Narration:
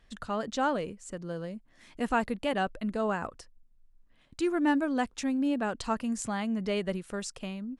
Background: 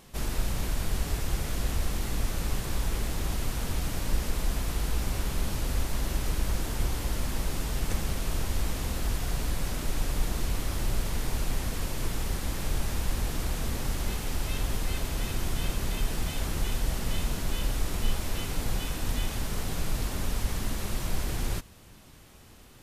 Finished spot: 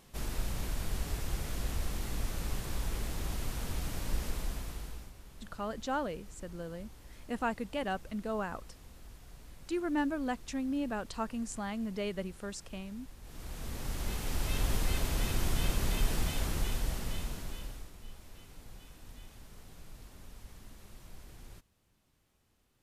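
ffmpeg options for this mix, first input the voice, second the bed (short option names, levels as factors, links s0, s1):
-filter_complex "[0:a]adelay=5300,volume=0.531[s0];[1:a]volume=5.96,afade=t=out:st=4.27:d=0.86:silence=0.149624,afade=t=in:st=13.21:d=1.48:silence=0.0841395,afade=t=out:st=16.13:d=1.79:silence=0.1[s1];[s0][s1]amix=inputs=2:normalize=0"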